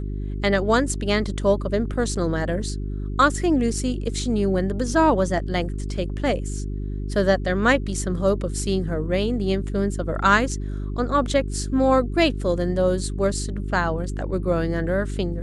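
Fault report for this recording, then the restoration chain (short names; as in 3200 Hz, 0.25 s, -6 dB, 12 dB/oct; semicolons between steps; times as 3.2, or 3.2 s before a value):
hum 50 Hz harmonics 8 -28 dBFS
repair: de-hum 50 Hz, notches 8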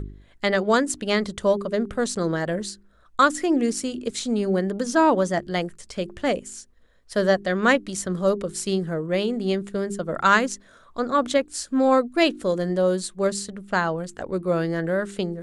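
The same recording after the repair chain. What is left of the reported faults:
none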